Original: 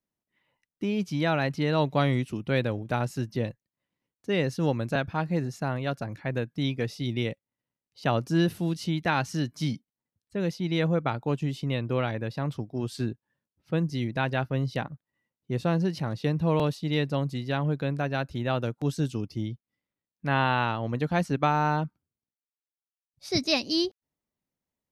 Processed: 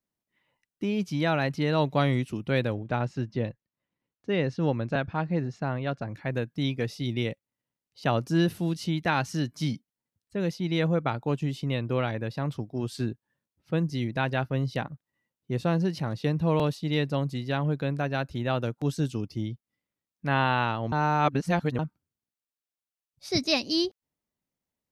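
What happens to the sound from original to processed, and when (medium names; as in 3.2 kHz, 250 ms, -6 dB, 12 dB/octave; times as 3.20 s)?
2.74–6.16 s: distance through air 140 m
20.92–21.79 s: reverse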